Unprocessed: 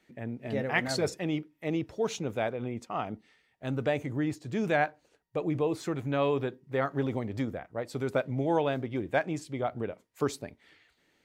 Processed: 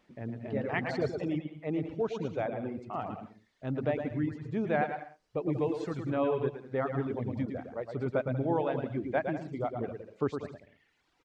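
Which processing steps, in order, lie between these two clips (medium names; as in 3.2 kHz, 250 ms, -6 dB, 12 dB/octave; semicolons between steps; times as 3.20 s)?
word length cut 10-bit, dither triangular; 5.53–6.09 s: treble shelf 4.4 kHz +12 dB; bouncing-ball echo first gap 110 ms, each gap 0.7×, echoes 5; reverb removal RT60 0.97 s; tape spacing loss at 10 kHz 31 dB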